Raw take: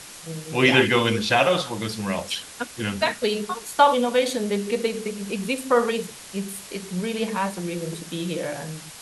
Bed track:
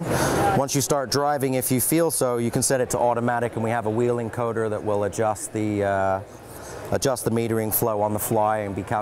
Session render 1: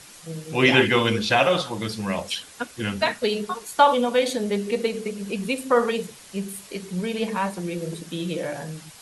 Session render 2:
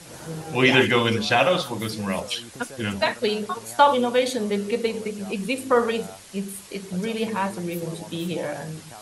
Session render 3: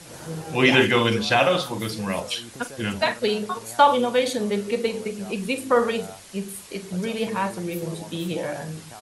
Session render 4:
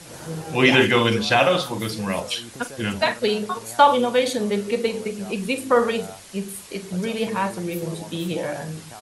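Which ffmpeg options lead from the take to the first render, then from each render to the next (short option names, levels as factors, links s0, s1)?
-af "afftdn=nr=6:nf=-42"
-filter_complex "[1:a]volume=0.1[s0];[0:a][s0]amix=inputs=2:normalize=0"
-filter_complex "[0:a]asplit=2[s0][s1];[s1]adelay=43,volume=0.2[s2];[s0][s2]amix=inputs=2:normalize=0"
-af "volume=1.19,alimiter=limit=0.708:level=0:latency=1"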